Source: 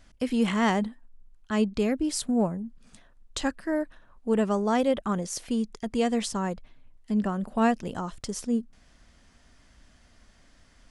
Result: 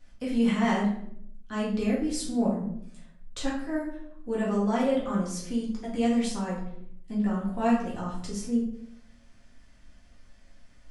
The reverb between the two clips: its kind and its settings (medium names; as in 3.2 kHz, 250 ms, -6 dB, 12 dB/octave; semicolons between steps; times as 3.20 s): simulated room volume 120 m³, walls mixed, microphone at 1.9 m; trim -10 dB